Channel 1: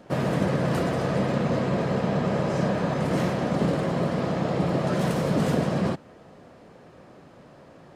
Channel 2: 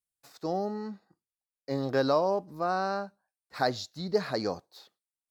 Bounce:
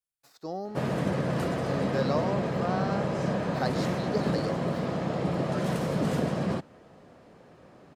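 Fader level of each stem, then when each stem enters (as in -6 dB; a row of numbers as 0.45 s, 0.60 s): -4.0 dB, -4.5 dB; 0.65 s, 0.00 s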